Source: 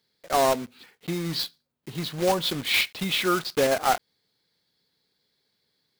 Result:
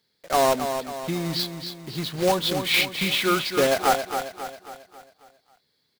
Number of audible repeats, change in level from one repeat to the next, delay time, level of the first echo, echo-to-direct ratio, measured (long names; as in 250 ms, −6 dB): 5, −6.5 dB, 271 ms, −8.0 dB, −7.0 dB